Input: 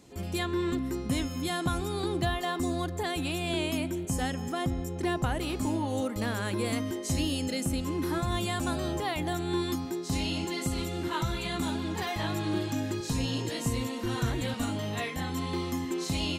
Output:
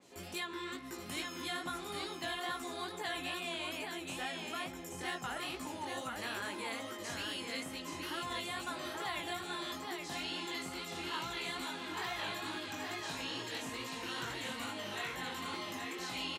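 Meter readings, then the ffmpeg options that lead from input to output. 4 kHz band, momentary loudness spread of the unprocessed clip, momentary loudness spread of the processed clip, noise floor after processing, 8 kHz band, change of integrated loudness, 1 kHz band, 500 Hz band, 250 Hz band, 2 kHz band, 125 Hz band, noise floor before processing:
-3.5 dB, 3 LU, 3 LU, -46 dBFS, -7.5 dB, -8.5 dB, -5.5 dB, -11.0 dB, -14.5 dB, -2.5 dB, -20.5 dB, -36 dBFS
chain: -filter_complex "[0:a]highpass=f=570:p=1,acrossover=split=970|4100[s0][s1][s2];[s0]acompressor=threshold=0.00562:ratio=4[s3];[s1]acompressor=threshold=0.0126:ratio=4[s4];[s2]acompressor=threshold=0.00501:ratio=4[s5];[s3][s4][s5]amix=inputs=3:normalize=0,flanger=delay=16:depth=6.4:speed=2.3,aecho=1:1:827:0.631,adynamicequalizer=threshold=0.00224:dfrequency=4000:dqfactor=0.7:tfrequency=4000:tqfactor=0.7:attack=5:release=100:ratio=0.375:range=2:mode=cutabove:tftype=highshelf,volume=1.26"

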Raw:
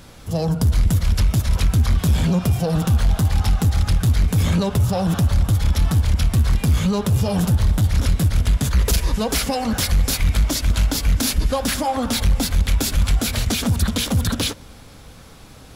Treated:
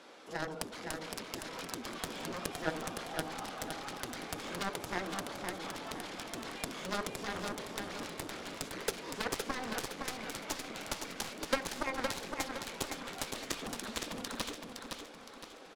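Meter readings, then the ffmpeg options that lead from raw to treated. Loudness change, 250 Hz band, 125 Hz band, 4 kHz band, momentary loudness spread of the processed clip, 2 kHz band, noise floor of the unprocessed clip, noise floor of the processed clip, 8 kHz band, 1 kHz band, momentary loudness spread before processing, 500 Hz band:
-19.5 dB, -20.0 dB, -33.5 dB, -14.5 dB, 5 LU, -9.0 dB, -42 dBFS, -52 dBFS, -15.5 dB, -11.0 dB, 3 LU, -12.5 dB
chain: -filter_complex "[0:a]highpass=f=310:w=0.5412,highpass=f=310:w=1.3066,highshelf=f=7200:g=7.5,acrossover=split=500[s0][s1];[s1]acompressor=threshold=0.0316:ratio=3[s2];[s0][s2]amix=inputs=2:normalize=0,aeval=exprs='0.282*(cos(1*acos(clip(val(0)/0.282,-1,1)))-cos(1*PI/2))+0.0224*(cos(2*acos(clip(val(0)/0.282,-1,1)))-cos(2*PI/2))+0.0501*(cos(3*acos(clip(val(0)/0.282,-1,1)))-cos(3*PI/2))+0.0398*(cos(7*acos(clip(val(0)/0.282,-1,1)))-cos(7*PI/2))':c=same,adynamicsmooth=sensitivity=6:basefreq=3800,asplit=2[s3][s4];[s4]aecho=0:1:514|1028|1542|2056|2570:0.562|0.225|0.09|0.036|0.0144[s5];[s3][s5]amix=inputs=2:normalize=0"

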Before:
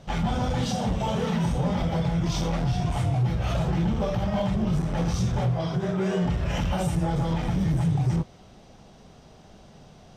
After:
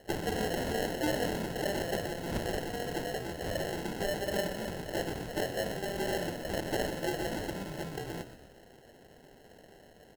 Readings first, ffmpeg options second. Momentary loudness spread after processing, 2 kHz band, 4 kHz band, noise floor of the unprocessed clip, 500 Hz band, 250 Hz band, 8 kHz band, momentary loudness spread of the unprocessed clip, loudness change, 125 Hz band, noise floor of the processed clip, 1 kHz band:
6 LU, +0.5 dB, -2.5 dB, -51 dBFS, -2.0 dB, -10.5 dB, -1.5 dB, 2 LU, -8.5 dB, -17.5 dB, -57 dBFS, -6.5 dB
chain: -filter_complex "[0:a]highpass=540,acrusher=samples=37:mix=1:aa=0.000001,asplit=5[s0][s1][s2][s3][s4];[s1]adelay=122,afreqshift=-43,volume=0.266[s5];[s2]adelay=244,afreqshift=-86,volume=0.117[s6];[s3]adelay=366,afreqshift=-129,volume=0.0513[s7];[s4]adelay=488,afreqshift=-172,volume=0.0226[s8];[s0][s5][s6][s7][s8]amix=inputs=5:normalize=0"

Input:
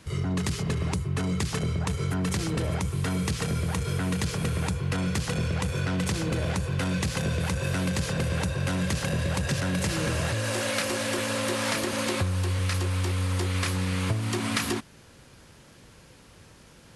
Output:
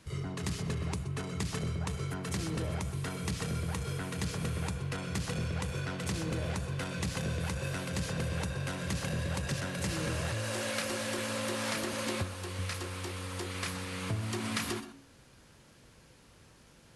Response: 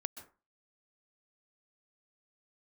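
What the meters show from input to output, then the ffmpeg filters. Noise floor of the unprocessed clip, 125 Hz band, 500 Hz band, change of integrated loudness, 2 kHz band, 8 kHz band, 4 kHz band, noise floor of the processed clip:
-53 dBFS, -8.0 dB, -6.5 dB, -7.5 dB, -6.5 dB, -6.0 dB, -6.5 dB, -59 dBFS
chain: -filter_complex "[0:a]bandreject=f=91.73:t=h:w=4,bandreject=f=183.46:t=h:w=4,bandreject=f=275.19:t=h:w=4,bandreject=f=366.92:t=h:w=4,bandreject=f=458.65:t=h:w=4,bandreject=f=550.38:t=h:w=4,bandreject=f=642.11:t=h:w=4,bandreject=f=733.84:t=h:w=4,bandreject=f=825.57:t=h:w=4,bandreject=f=917.3:t=h:w=4,bandreject=f=1009.03:t=h:w=4,bandreject=f=1100.76:t=h:w=4,bandreject=f=1192.49:t=h:w=4,bandreject=f=1284.22:t=h:w=4,bandreject=f=1375.95:t=h:w=4,bandreject=f=1467.68:t=h:w=4,bandreject=f=1559.41:t=h:w=4,bandreject=f=1651.14:t=h:w=4,bandreject=f=1742.87:t=h:w=4,bandreject=f=1834.6:t=h:w=4,bandreject=f=1926.33:t=h:w=4,bandreject=f=2018.06:t=h:w=4,bandreject=f=2109.79:t=h:w=4,bandreject=f=2201.52:t=h:w=4,bandreject=f=2293.25:t=h:w=4,bandreject=f=2384.98:t=h:w=4,bandreject=f=2476.71:t=h:w=4,bandreject=f=2568.44:t=h:w=4,bandreject=f=2660.17:t=h:w=4,bandreject=f=2751.9:t=h:w=4,bandreject=f=2843.63:t=h:w=4,bandreject=f=2935.36:t=h:w=4,bandreject=f=3027.09:t=h:w=4,bandreject=f=3118.82:t=h:w=4,bandreject=f=3210.55:t=h:w=4,bandreject=f=3302.28:t=h:w=4,bandreject=f=3394.01:t=h:w=4,bandreject=f=3485.74:t=h:w=4,bandreject=f=3577.47:t=h:w=4,bandreject=f=3669.2:t=h:w=4[s0];[1:a]atrim=start_sample=2205,afade=t=out:st=0.18:d=0.01,atrim=end_sample=8379[s1];[s0][s1]afir=irnorm=-1:irlink=0,volume=0.596"

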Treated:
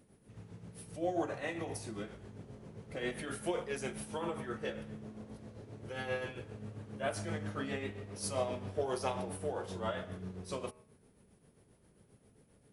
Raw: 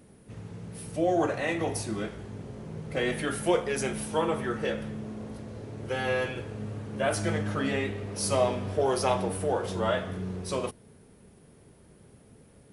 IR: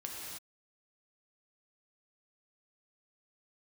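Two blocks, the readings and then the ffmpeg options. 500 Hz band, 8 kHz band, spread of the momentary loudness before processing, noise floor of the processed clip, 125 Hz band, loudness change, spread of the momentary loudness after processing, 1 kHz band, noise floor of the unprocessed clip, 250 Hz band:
-10.0 dB, -9.5 dB, 14 LU, -67 dBFS, -9.5 dB, -10.0 dB, 14 LU, -10.0 dB, -56 dBFS, -9.5 dB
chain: -af "bandreject=f=78.46:t=h:w=4,bandreject=f=156.92:t=h:w=4,bandreject=f=235.38:t=h:w=4,bandreject=f=313.84:t=h:w=4,bandreject=f=392.3:t=h:w=4,bandreject=f=470.76:t=h:w=4,bandreject=f=549.22:t=h:w=4,bandreject=f=627.68:t=h:w=4,bandreject=f=706.14:t=h:w=4,bandreject=f=784.6:t=h:w=4,bandreject=f=863.06:t=h:w=4,bandreject=f=941.52:t=h:w=4,bandreject=f=1019.98:t=h:w=4,bandreject=f=1098.44:t=h:w=4,bandreject=f=1176.9:t=h:w=4,bandreject=f=1255.36:t=h:w=4,bandreject=f=1333.82:t=h:w=4,bandreject=f=1412.28:t=h:w=4,bandreject=f=1490.74:t=h:w=4,bandreject=f=1569.2:t=h:w=4,bandreject=f=1647.66:t=h:w=4,bandreject=f=1726.12:t=h:w=4,bandreject=f=1804.58:t=h:w=4,bandreject=f=1883.04:t=h:w=4,bandreject=f=1961.5:t=h:w=4,bandreject=f=2039.96:t=h:w=4,bandreject=f=2118.42:t=h:w=4,bandreject=f=2196.88:t=h:w=4,bandreject=f=2275.34:t=h:w=4,bandreject=f=2353.8:t=h:w=4,bandreject=f=2432.26:t=h:w=4,bandreject=f=2510.72:t=h:w=4,bandreject=f=2589.18:t=h:w=4,bandreject=f=2667.64:t=h:w=4,bandreject=f=2746.1:t=h:w=4,bandreject=f=2824.56:t=h:w=4,tremolo=f=7.5:d=0.53,volume=0.447"

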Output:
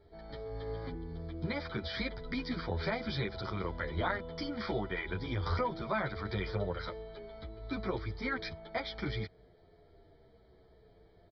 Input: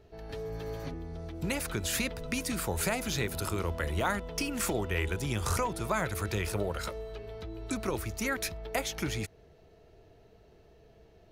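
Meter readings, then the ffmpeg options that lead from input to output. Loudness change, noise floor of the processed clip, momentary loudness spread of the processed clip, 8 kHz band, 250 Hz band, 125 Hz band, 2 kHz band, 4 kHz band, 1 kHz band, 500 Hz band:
-4.0 dB, -62 dBFS, 9 LU, under -30 dB, -3.0 dB, -3.0 dB, -3.5 dB, -4.5 dB, -3.0 dB, -3.0 dB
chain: -filter_complex "[0:a]aresample=11025,aresample=44100,asuperstop=centerf=2700:order=20:qfactor=4.9,asplit=2[s0][s1];[s1]adelay=9.9,afreqshift=-0.7[s2];[s0][s2]amix=inputs=2:normalize=1"

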